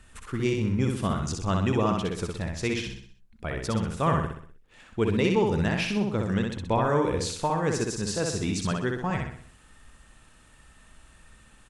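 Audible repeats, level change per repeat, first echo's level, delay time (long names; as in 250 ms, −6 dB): 5, −6.5 dB, −3.5 dB, 63 ms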